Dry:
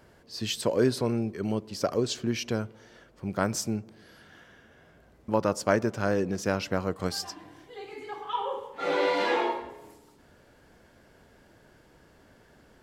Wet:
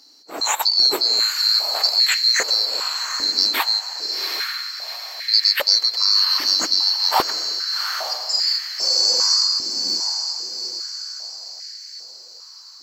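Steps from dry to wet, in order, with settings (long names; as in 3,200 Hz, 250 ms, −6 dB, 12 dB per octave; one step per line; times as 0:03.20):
neighbouring bands swapped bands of 4,000 Hz
in parallel at +3 dB: output level in coarse steps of 18 dB
on the sum: feedback delay with all-pass diffusion 776 ms, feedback 48%, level −5.5 dB
high-pass on a step sequencer 2.5 Hz 290–1,900 Hz
level +4.5 dB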